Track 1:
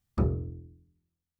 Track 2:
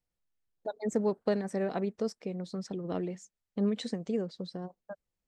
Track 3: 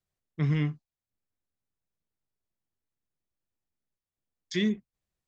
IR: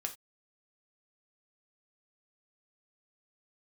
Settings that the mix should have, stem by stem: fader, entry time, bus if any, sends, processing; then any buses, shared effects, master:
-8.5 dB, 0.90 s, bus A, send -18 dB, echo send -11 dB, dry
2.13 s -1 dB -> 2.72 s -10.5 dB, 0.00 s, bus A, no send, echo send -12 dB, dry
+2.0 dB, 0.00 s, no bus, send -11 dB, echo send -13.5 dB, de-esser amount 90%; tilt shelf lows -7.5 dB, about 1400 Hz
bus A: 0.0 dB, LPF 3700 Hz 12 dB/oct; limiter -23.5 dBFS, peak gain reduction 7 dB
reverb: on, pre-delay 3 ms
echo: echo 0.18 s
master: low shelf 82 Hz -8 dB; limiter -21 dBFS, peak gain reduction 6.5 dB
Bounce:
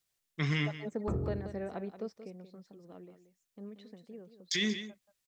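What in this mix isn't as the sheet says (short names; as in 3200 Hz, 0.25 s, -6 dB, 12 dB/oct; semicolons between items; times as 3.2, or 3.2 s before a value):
stem 1 -8.5 dB -> -2.5 dB; stem 2 -1.0 dB -> -7.0 dB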